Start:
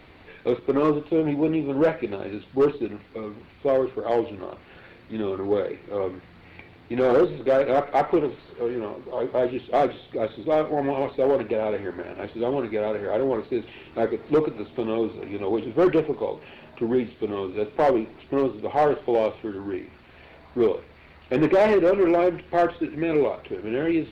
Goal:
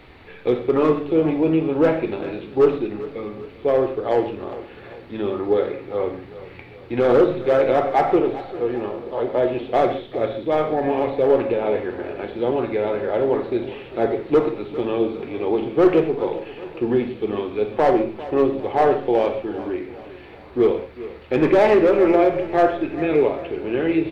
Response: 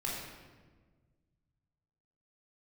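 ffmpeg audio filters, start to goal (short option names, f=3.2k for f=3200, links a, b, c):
-filter_complex "[0:a]aecho=1:1:399|798|1197|1596:0.158|0.0761|0.0365|0.0175,asplit=2[a][b];[1:a]atrim=start_sample=2205,atrim=end_sample=6615[c];[b][c]afir=irnorm=-1:irlink=0,volume=-5.5dB[d];[a][d]amix=inputs=2:normalize=0"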